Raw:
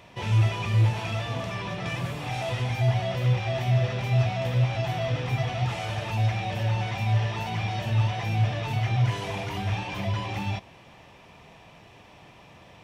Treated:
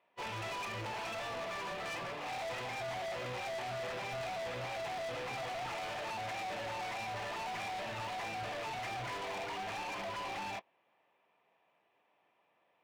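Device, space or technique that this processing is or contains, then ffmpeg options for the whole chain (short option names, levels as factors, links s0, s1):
walkie-talkie: -af "highpass=420,lowpass=2500,asoftclip=type=hard:threshold=0.0106,agate=range=0.0708:threshold=0.00708:ratio=16:detection=peak,volume=1.33"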